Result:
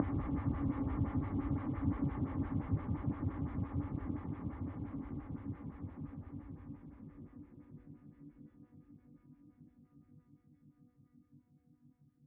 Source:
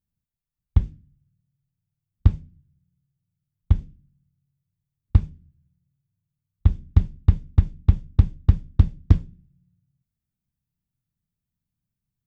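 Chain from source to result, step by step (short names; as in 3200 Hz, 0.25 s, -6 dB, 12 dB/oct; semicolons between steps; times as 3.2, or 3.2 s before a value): de-hum 244.6 Hz, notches 38; Paulstretch 34×, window 0.50 s, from 0.77; speaker cabinet 170–2100 Hz, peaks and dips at 190 Hz -7 dB, 280 Hz +8 dB, 410 Hz -6 dB, 760 Hz -5 dB; photocell phaser 5.8 Hz; gain +2.5 dB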